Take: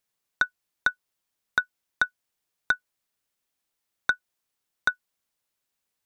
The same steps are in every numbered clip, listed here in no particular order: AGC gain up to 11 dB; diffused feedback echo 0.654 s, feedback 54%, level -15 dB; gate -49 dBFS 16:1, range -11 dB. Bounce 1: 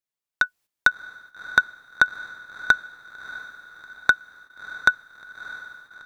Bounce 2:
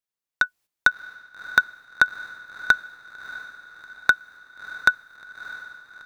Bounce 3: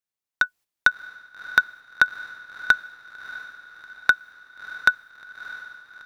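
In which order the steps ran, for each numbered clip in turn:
AGC > diffused feedback echo > gate; AGC > gate > diffused feedback echo; gate > AGC > diffused feedback echo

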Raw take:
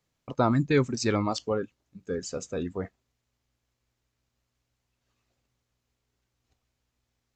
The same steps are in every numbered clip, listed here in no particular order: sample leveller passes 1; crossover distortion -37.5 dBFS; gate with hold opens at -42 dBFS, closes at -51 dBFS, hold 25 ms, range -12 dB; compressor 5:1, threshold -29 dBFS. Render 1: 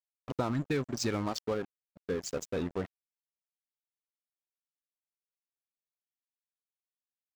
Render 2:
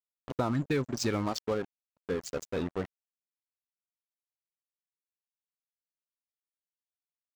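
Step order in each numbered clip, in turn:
compressor > sample leveller > crossover distortion > gate with hold; gate with hold > crossover distortion > compressor > sample leveller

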